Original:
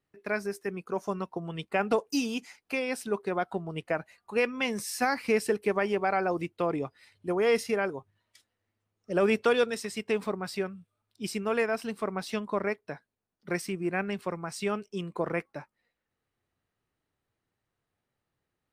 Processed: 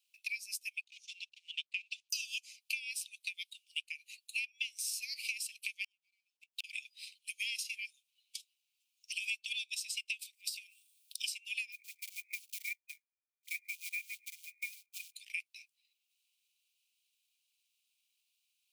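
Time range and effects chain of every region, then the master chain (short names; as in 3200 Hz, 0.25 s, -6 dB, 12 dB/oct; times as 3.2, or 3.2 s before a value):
0.81–2.1 G.711 law mismatch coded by A + air absorption 110 m
5.84–6.64 G.711 law mismatch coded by mu + flipped gate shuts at -22 dBFS, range -41 dB
10.19–11.22 tilt +4 dB/oct + compressor 16:1, threshold -40 dBFS
11.72–15.14 brick-wall FIR low-pass 2500 Hz + tilt -2 dB/oct + short-mantissa float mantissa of 4-bit
whole clip: steep high-pass 2400 Hz 96 dB/oct; transient shaper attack +5 dB, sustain -4 dB; compressor 6:1, threshold -48 dBFS; gain +11.5 dB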